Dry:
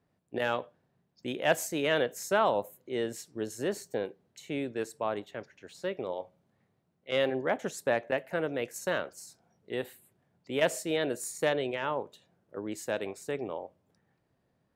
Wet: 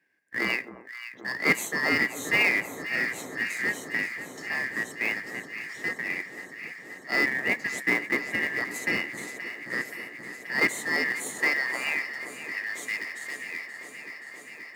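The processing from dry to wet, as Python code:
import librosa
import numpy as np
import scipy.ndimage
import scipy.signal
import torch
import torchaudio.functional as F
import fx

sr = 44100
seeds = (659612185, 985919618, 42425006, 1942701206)

p1 = fx.band_shuffle(x, sr, order='2143')
p2 = fx.sample_hold(p1, sr, seeds[0], rate_hz=1700.0, jitter_pct=20)
p3 = p1 + (p2 * 10.0 ** (-9.0 / 20.0))
p4 = fx.filter_sweep_highpass(p3, sr, from_hz=230.0, to_hz=2900.0, start_s=10.81, end_s=13.13, q=0.93)
p5 = fx.echo_alternate(p4, sr, ms=264, hz=1200.0, feedback_pct=89, wet_db=-11.0)
y = p5 * 10.0 ** (2.0 / 20.0)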